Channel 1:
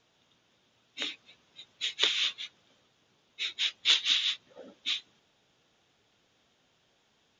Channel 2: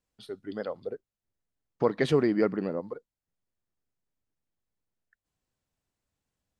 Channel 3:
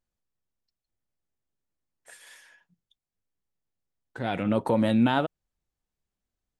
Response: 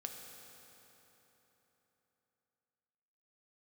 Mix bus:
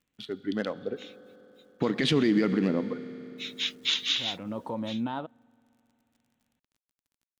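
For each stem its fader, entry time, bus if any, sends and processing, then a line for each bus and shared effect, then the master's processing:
−0.5 dB, 0.00 s, no send, bit reduction 10 bits; automatic ducking −13 dB, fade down 1.00 s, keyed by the second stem
+0.5 dB, 0.00 s, send −6.5 dB, adaptive Wiener filter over 9 samples; meter weighting curve D
−20.0 dB, 0.00 s, send −23.5 dB, octave-band graphic EQ 500/1,000/4,000 Hz +8/+12/+7 dB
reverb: on, RT60 3.8 s, pre-delay 3 ms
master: low shelf with overshoot 350 Hz +6.5 dB, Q 1.5; brickwall limiter −15 dBFS, peak gain reduction 10 dB

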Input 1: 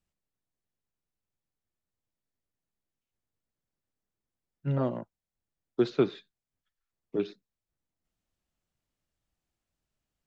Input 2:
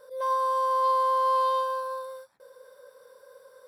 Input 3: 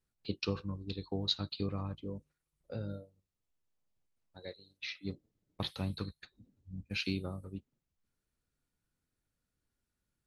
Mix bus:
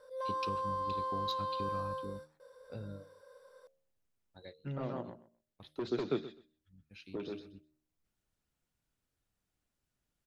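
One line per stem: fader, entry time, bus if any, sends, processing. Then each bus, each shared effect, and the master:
+0.5 dB, 0.00 s, bus A, no send, echo send −8.5 dB, harmonic and percussive parts rebalanced harmonic −8 dB
−6.0 dB, 0.00 s, no bus, no send, no echo send, low-pass filter 8,500 Hz 12 dB per octave; brickwall limiter −24.5 dBFS, peak gain reduction 8 dB
−3.0 dB, 0.00 s, bus A, no send, no echo send, notch filter 4,400 Hz; automatic ducking −15 dB, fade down 0.20 s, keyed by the first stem
bus A: 0.0 dB, soft clipping −24.5 dBFS, distortion −8 dB; downward compressor 2.5 to 1, threshold −38 dBFS, peak gain reduction 7.5 dB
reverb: not used
echo: repeating echo 127 ms, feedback 16%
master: hum removal 76.73 Hz, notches 9

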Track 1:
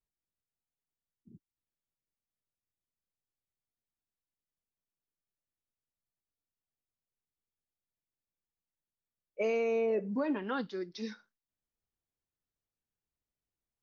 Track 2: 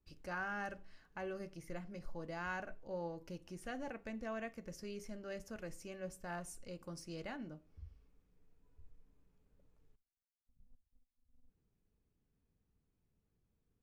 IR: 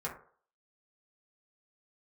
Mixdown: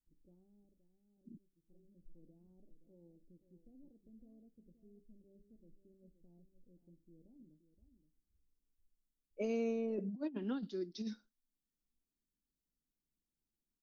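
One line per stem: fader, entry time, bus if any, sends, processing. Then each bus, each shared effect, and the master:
−4.0 dB, 0.00 s, no send, no echo send, graphic EQ with 10 bands 250 Hz +11 dB, 500 Hz −5 dB, 1,000 Hz −10 dB, 2,000 Hz −11 dB; compressor whose output falls as the input rises −31 dBFS, ratio −0.5
−10.5 dB, 0.00 s, no send, echo send −11.5 dB, inverse Chebyshev low-pass filter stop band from 2,000 Hz, stop band 80 dB; automatic ducking −17 dB, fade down 0.95 s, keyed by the first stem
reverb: not used
echo: single-tap delay 523 ms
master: parametric band 97 Hz −15 dB 1.2 octaves

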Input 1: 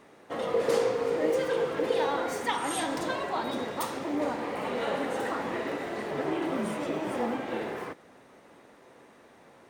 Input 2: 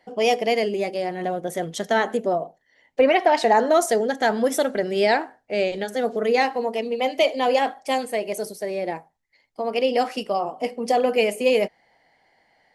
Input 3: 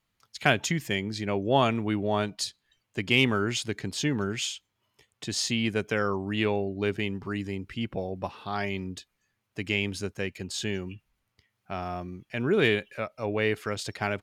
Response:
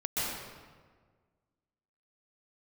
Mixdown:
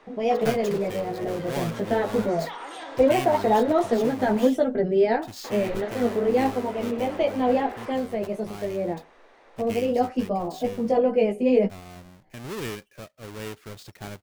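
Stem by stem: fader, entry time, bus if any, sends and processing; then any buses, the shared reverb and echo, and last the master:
+2.0 dB, 0.00 s, muted 0:04.47–0:05.44, no send, brickwall limiter −22 dBFS, peak gain reduction 7.5 dB; downward compressor, threshold −35 dBFS, peak gain reduction 9 dB; three-way crossover with the lows and the highs turned down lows −21 dB, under 330 Hz, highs −17 dB, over 6,100 Hz
−3.0 dB, 0.00 s, no send, spectral tilt −4.5 dB per octave; multi-voice chorus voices 6, 0.19 Hz, delay 16 ms, depth 4.3 ms
−14.0 dB, 0.00 s, no send, each half-wave held at its own peak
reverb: not used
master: no processing

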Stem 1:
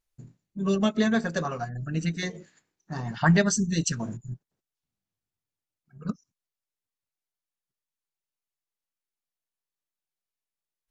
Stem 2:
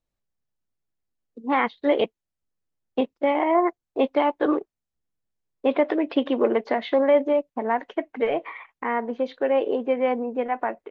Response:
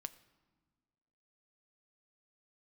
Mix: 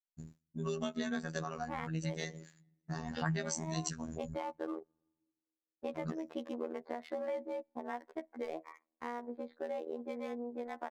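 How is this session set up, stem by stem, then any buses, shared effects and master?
0.0 dB, 0.00 s, send −14.5 dB, downward expander −50 dBFS
−10.0 dB, 0.20 s, send −22 dB, adaptive Wiener filter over 15 samples; noise gate −41 dBFS, range −30 dB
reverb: on, pre-delay 5 ms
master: high-shelf EQ 5,300 Hz +6 dB; phases set to zero 80.1 Hz; downward compressor 3 to 1, threshold −37 dBFS, peak gain reduction 16 dB

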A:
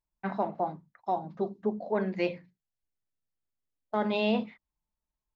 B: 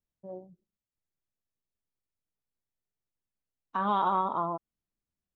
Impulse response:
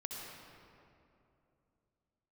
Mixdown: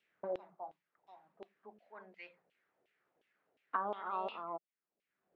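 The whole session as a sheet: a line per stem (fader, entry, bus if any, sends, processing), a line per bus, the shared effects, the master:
−13.0 dB, 0.00 s, no send, high-shelf EQ 4,600 Hz +7.5 dB
+0.5 dB, 0.00 s, no send, graphic EQ with 15 bands 160 Hz +3 dB, 400 Hz +6 dB, 1,000 Hz −9 dB; multiband upward and downward compressor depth 100%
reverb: not used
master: auto-filter band-pass saw down 2.8 Hz 580–3,000 Hz

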